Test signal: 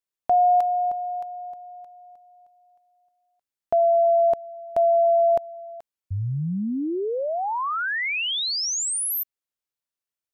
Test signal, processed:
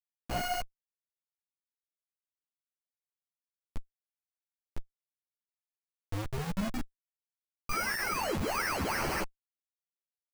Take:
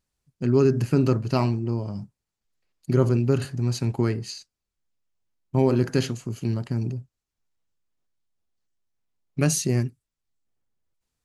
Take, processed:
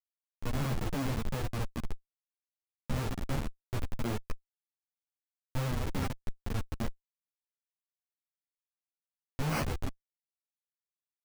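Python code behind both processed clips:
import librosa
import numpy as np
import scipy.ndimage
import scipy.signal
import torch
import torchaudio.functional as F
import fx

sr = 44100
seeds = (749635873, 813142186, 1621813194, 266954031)

y = fx.band_shelf(x, sr, hz=570.0, db=-10.5, octaves=1.7)
y = fx.hum_notches(y, sr, base_hz=60, count=10)
y = fx.schmitt(y, sr, flips_db=-24.5)
y = fx.sample_hold(y, sr, seeds[0], rate_hz=3600.0, jitter_pct=0)
y = fx.ensemble(y, sr)
y = F.gain(torch.from_numpy(y), 2.0).numpy()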